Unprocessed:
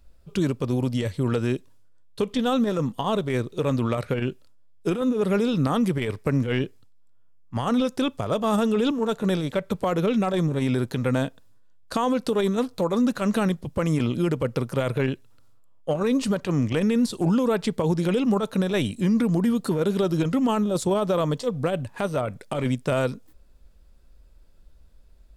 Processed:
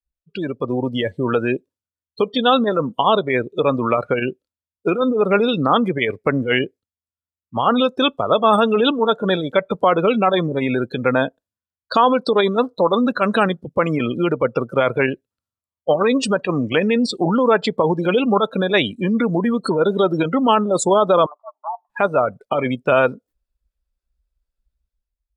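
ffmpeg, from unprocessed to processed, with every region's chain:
-filter_complex "[0:a]asettb=1/sr,asplit=3[a][b][c];[a]atrim=end=21.264[d];[b]atrim=start=21.26:end=21.9,asetpts=PTS-STARTPTS,afade=t=in:d=0.004:c=qsin,afade=t=out:st=0.636:d=0.004:c=qsin,afreqshift=140,asuperpass=centerf=1000:order=4:qfactor=3.4[e];[c]atrim=start=21.896[f];[d][e]acrossfade=d=0.004:c1=hsin:c2=qsin[g];[g][f]acrossfade=d=0.004:c1=qsin:c2=hsin,afftdn=nr=35:nf=-32,highpass=f=960:p=1,dynaudnorm=f=120:g=9:m=11dB,volume=4dB"

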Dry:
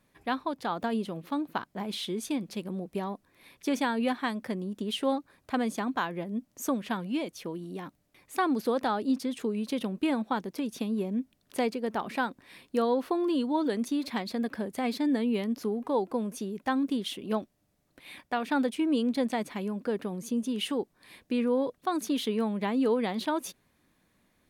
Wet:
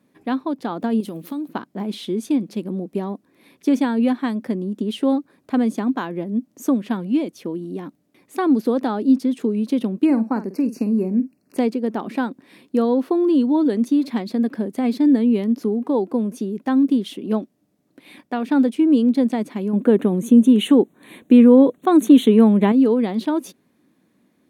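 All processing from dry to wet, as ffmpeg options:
-filter_complex "[0:a]asettb=1/sr,asplit=3[a][b][c];[a]atrim=end=1.004[d];[b]atrim=start=1:end=1.48,asetpts=PTS-STARTPTS,afade=t=in:d=0.004:c=qsin,afade=t=out:st=0.476:d=0.004:c=qsin,aemphasis=mode=production:type=75kf,acompressor=threshold=-34dB:ratio=10:attack=3.2:release=140:knee=1:detection=peak[e];[c]atrim=start=1.476[f];[d][e]acrossfade=d=0.004:c1=hsin:c2=qsin[g];[g][f]acrossfade=d=0.004:c1=qsin:c2=hsin,asettb=1/sr,asplit=3[h][i][j];[h]atrim=end=10.054[k];[i]atrim=start=10.05:end=11.57,asetpts=PTS-STARTPTS,afade=t=in:d=0.004:c=qsin,afade=t=out:st=1.516:d=0.004:c=qsin,asuperstop=centerf=3400:order=8:qfactor=2.4,asplit=2[l][m];[m]adelay=49,volume=-12.5dB[n];[l][n]amix=inputs=2:normalize=0,atrim=end_sample=67032[o];[j]atrim=start=11.566[p];[k][o]acrossfade=d=0.004:c1=hsin:c2=qsin[q];[q][p]acrossfade=d=0.004:c1=qsin:c2=hsin,asettb=1/sr,asplit=3[r][s][t];[r]atrim=end=19.734[u];[s]atrim=start=19.73:end=22.72,asetpts=PTS-STARTPTS,afade=t=in:d=0.004:c=qsin,afade=t=out:st=2.986:d=0.004:c=qsin,acontrast=84,asuperstop=centerf=5000:order=4:qfactor=2.1[v];[t]atrim=start=22.716[w];[u][v]acrossfade=d=0.004:c1=hsin:c2=qsin[x];[x][w]acrossfade=d=0.004:c1=qsin:c2=hsin,highpass=120,equalizer=f=270:t=o:w=1.8:g=12.5"

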